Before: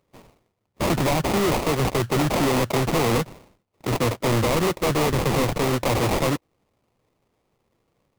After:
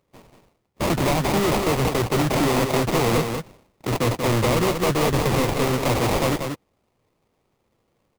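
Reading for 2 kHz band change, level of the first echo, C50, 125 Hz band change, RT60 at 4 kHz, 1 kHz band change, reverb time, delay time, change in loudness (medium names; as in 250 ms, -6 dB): +1.0 dB, -6.0 dB, no reverb, +1.0 dB, no reverb, +1.0 dB, no reverb, 186 ms, +1.0 dB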